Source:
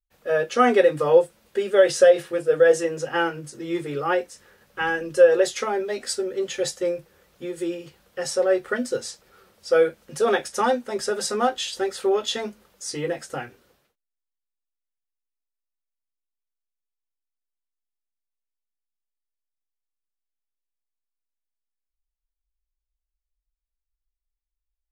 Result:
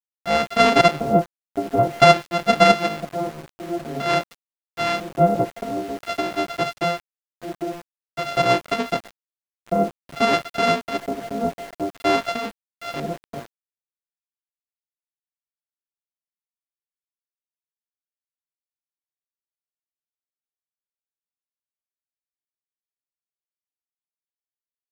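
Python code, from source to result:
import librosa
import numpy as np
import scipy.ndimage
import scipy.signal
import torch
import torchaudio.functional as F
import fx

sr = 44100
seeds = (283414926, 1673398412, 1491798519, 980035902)

y = np.r_[np.sort(x[:len(x) // 64 * 64].reshape(-1, 64), axis=1).ravel(), x[len(x) // 64 * 64:]]
y = fx.filter_lfo_lowpass(y, sr, shape='square', hz=0.5, low_hz=550.0, high_hz=4200.0, q=0.85)
y = np.where(np.abs(y) >= 10.0 ** (-36.5 / 20.0), y, 0.0)
y = F.gain(torch.from_numpy(y), 2.0).numpy()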